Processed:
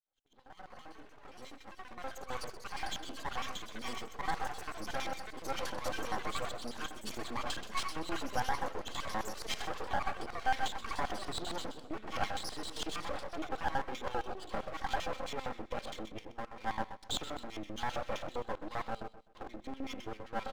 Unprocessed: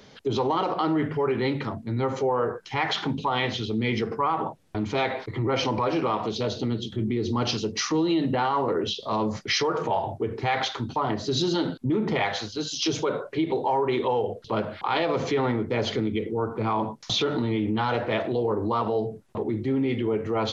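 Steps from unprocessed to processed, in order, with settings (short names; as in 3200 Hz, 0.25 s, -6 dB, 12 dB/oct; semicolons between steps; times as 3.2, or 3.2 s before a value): opening faded in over 5.43 s; notch 460 Hz, Q 12; comb 3.8 ms, depth 76%; LFO band-pass square 7.6 Hz 730–3500 Hz; in parallel at -2.5 dB: limiter -30 dBFS, peak gain reduction 16 dB; on the sum: high shelf 6300 Hz -8.5 dB; half-wave rectifier; echoes that change speed 0.349 s, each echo +6 st, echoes 2, each echo -6 dB; feedback echo 0.127 s, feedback 28%, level -14 dB; gain -4 dB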